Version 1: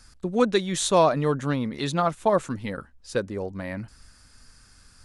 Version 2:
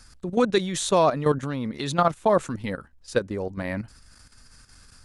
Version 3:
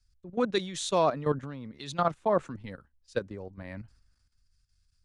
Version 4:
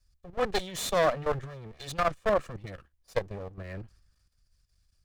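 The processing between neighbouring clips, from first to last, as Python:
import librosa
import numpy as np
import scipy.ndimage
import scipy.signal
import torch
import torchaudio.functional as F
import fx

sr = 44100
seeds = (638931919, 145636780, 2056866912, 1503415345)

y1 = fx.level_steps(x, sr, step_db=11)
y1 = y1 * librosa.db_to_amplitude(4.5)
y2 = fx.air_absorb(y1, sr, metres=61.0)
y2 = fx.band_widen(y2, sr, depth_pct=70)
y2 = y2 * librosa.db_to_amplitude(-7.5)
y3 = fx.lower_of_two(y2, sr, delay_ms=1.7)
y3 = y3 * librosa.db_to_amplitude(2.5)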